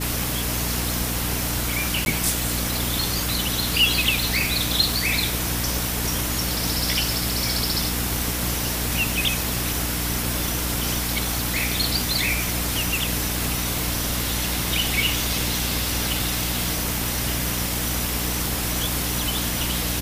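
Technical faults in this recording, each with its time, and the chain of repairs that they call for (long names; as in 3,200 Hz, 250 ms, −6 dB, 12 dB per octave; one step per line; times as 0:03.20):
surface crackle 41 per second −30 dBFS
mains hum 60 Hz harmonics 5 −29 dBFS
0:02.05–0:02.06: drop-out 11 ms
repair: click removal
hum removal 60 Hz, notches 5
repair the gap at 0:02.05, 11 ms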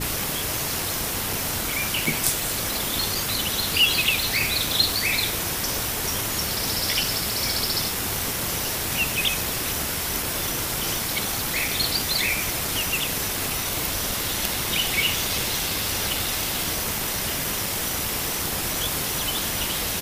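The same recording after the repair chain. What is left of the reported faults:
none of them is left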